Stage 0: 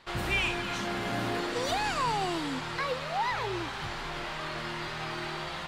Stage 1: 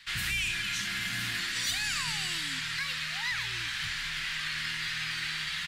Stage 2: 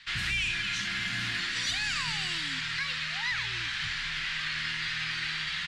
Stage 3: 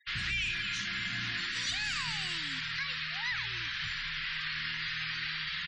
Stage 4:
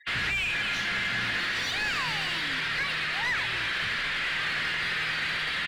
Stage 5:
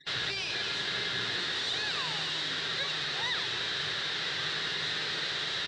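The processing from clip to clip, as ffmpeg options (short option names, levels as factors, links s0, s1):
-filter_complex "[0:a]firequalizer=gain_entry='entry(160,0);entry(450,-24);entry(1700,11);entry(11000,14)':delay=0.05:min_phase=1,acrossover=split=290|640|5200[s0][s1][s2][s3];[s2]alimiter=limit=0.1:level=0:latency=1:release=88[s4];[s0][s1][s4][s3]amix=inputs=4:normalize=0,volume=0.596"
-af "lowpass=5600,volume=1.19"
-af "afftfilt=real='re*gte(hypot(re,im),0.00794)':imag='im*gte(hypot(re,im),0.00794)':win_size=1024:overlap=0.75,volume=0.708"
-filter_complex "[0:a]asplit=2[s0][s1];[s1]highpass=f=720:p=1,volume=7.08,asoftclip=type=tanh:threshold=0.075[s2];[s0][s2]amix=inputs=2:normalize=0,lowpass=f=1300:p=1,volume=0.501,volume=2"
-af "aeval=exprs='max(val(0),0)':c=same,highpass=100,equalizer=f=140:t=q:w=4:g=4,equalizer=f=230:t=q:w=4:g=-6,equalizer=f=410:t=q:w=4:g=7,equalizer=f=2300:t=q:w=4:g=-6,equalizer=f=3800:t=q:w=4:g=10,equalizer=f=6500:t=q:w=4:g=-5,lowpass=f=7200:w=0.5412,lowpass=f=7200:w=1.3066"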